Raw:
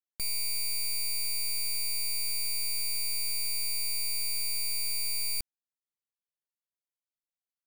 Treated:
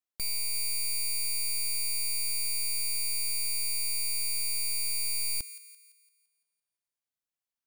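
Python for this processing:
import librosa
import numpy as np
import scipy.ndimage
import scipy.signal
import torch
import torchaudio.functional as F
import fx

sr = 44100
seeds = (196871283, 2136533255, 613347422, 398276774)

y = fx.echo_wet_highpass(x, sr, ms=170, feedback_pct=46, hz=1500.0, wet_db=-14.0)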